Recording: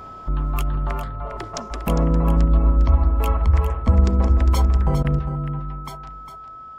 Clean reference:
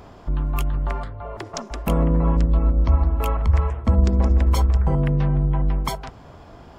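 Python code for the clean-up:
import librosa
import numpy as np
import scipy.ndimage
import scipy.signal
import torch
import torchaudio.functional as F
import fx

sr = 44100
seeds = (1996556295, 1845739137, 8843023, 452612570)

y = fx.notch(x, sr, hz=1300.0, q=30.0)
y = fx.fix_interpolate(y, sr, at_s=(5.03,), length_ms=13.0)
y = fx.fix_echo_inverse(y, sr, delay_ms=404, level_db=-10.0)
y = fx.gain(y, sr, db=fx.steps((0.0, 0.0), (5.19, 10.5)))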